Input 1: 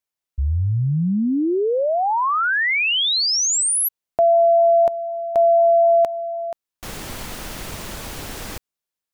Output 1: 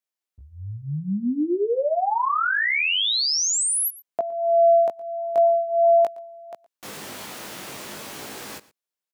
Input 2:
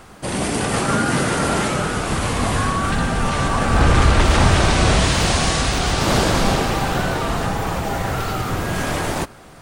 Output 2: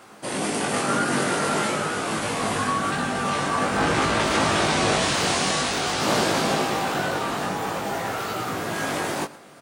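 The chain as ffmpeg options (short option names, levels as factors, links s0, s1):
-filter_complex "[0:a]highpass=200,flanger=delay=18.5:depth=2:speed=0.47,asplit=2[s0][s1];[s1]aecho=0:1:116:0.1[s2];[s0][s2]amix=inputs=2:normalize=0"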